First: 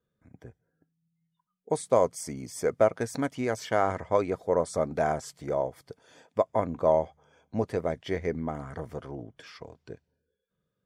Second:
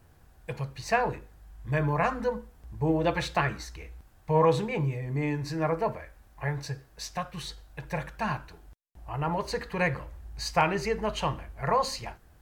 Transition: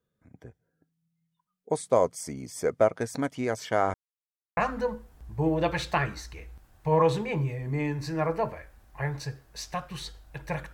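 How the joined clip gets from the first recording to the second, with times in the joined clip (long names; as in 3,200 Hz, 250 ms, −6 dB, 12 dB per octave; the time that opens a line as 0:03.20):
first
0:03.94–0:04.57: silence
0:04.57: continue with second from 0:02.00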